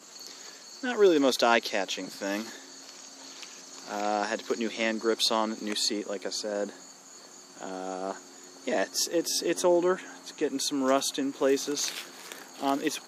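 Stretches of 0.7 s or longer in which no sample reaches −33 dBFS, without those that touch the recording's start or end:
0:06.69–0:07.61

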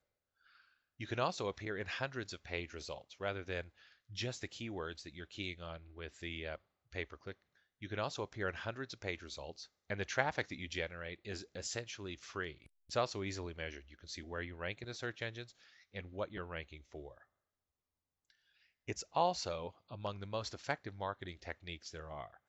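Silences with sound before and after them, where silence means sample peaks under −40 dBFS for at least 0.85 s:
0:17.07–0:18.88

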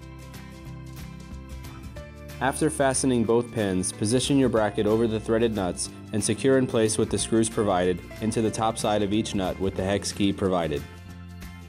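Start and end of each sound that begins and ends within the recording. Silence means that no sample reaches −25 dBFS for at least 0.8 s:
0:02.42–0:10.78

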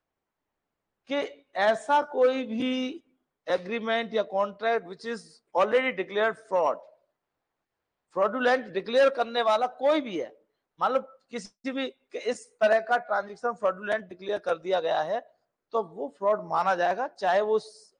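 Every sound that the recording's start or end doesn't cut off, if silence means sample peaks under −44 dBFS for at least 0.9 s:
0:01.09–0:06.89

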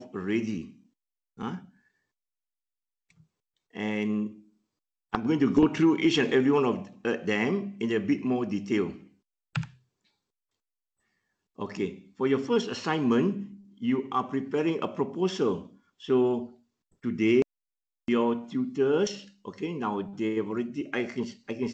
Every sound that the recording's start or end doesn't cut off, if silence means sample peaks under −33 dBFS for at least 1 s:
0:03.76–0:09.64

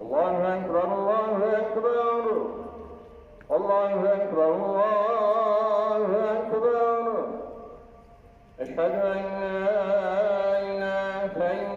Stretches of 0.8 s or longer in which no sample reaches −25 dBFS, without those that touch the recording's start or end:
0:02.51–0:03.51
0:07.31–0:08.61

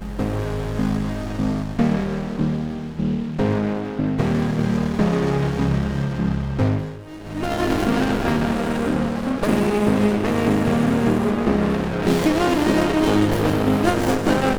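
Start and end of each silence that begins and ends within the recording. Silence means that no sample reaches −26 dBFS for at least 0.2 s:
0:06.94–0:07.27

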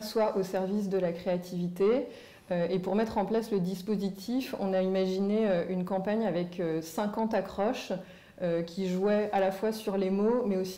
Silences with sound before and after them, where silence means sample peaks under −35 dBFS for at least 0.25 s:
0:02.08–0:02.51
0:08.00–0:08.41

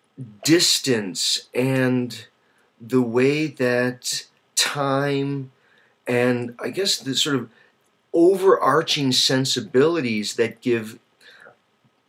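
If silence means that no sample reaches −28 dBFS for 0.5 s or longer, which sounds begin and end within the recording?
0:02.90–0:05.43
0:06.07–0:07.43
0:08.14–0:10.89

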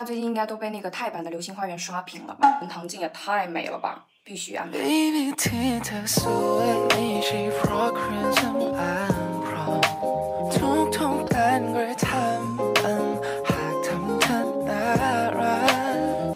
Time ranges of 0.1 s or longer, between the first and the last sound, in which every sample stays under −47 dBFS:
0:04.03–0:04.26

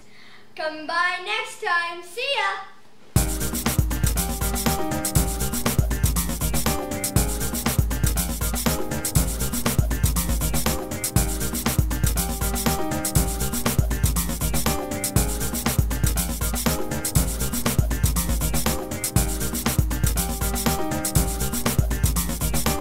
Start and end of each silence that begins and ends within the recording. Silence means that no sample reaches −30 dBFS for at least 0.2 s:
0:02.64–0:03.16

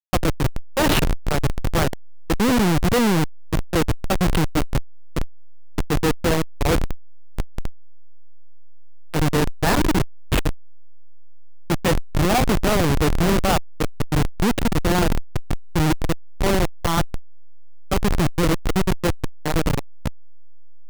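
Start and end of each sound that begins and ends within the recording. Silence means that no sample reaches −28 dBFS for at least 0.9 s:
0:09.14–0:10.55

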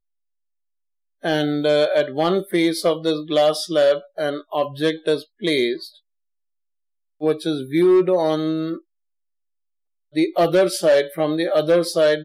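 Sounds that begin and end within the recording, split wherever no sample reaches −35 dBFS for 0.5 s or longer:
0:01.23–0:05.89
0:07.21–0:08.79

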